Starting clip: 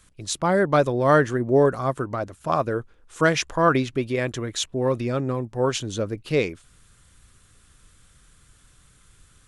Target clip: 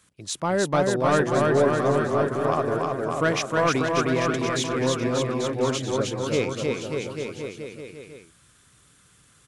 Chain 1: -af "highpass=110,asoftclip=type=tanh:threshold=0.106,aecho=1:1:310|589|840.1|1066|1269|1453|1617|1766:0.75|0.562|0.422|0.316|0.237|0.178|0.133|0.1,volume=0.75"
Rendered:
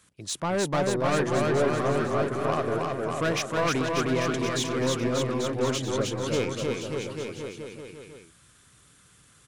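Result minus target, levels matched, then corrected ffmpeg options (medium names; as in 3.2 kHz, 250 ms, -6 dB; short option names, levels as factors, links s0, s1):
saturation: distortion +9 dB
-af "highpass=110,asoftclip=type=tanh:threshold=0.316,aecho=1:1:310|589|840.1|1066|1269|1453|1617|1766:0.75|0.562|0.422|0.316|0.237|0.178|0.133|0.1,volume=0.75"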